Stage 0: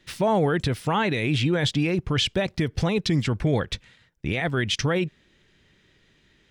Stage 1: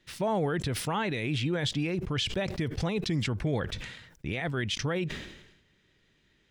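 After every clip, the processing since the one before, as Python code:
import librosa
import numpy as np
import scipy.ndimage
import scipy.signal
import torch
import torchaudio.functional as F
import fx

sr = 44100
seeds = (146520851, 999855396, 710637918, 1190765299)

y = fx.sustainer(x, sr, db_per_s=61.0)
y = y * 10.0 ** (-7.0 / 20.0)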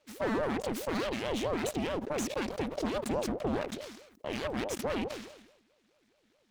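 y = np.abs(x)
y = fx.ring_lfo(y, sr, carrier_hz=410.0, swing_pct=50, hz=4.7)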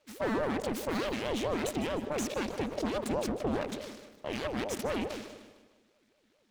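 y = fx.echo_feedback(x, sr, ms=152, feedback_pct=48, wet_db=-14.0)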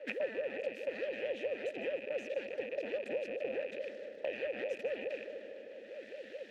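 y = fx.rattle_buzz(x, sr, strikes_db=-46.0, level_db=-29.0)
y = fx.vowel_filter(y, sr, vowel='e')
y = fx.band_squash(y, sr, depth_pct=100)
y = y * 10.0 ** (3.0 / 20.0)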